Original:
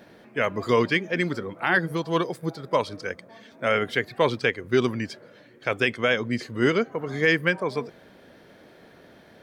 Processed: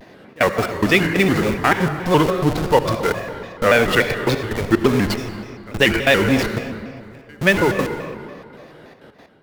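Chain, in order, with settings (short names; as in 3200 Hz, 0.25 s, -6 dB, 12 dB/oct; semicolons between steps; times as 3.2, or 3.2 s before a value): high shelf 8000 Hz -5 dB; in parallel at -4.5 dB: Schmitt trigger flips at -37.5 dBFS; 6.56–7.41 on the sum: flipped gate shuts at -20 dBFS, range -30 dB; step gate "xxxx.x.x..xxx.x" 183 bpm -24 dB; reverb RT60 2.4 s, pre-delay 63 ms, DRR 6.5 dB; shaped vibrato square 3.5 Hz, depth 160 cents; gain +6.5 dB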